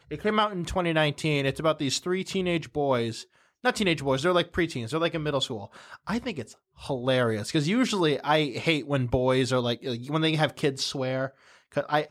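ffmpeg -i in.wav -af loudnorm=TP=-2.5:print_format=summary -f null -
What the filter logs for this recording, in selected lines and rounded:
Input Integrated:    -26.8 LUFS
Input True Peak:      -8.9 dBTP
Input LRA:             2.5 LU
Input Threshold:     -37.1 LUFS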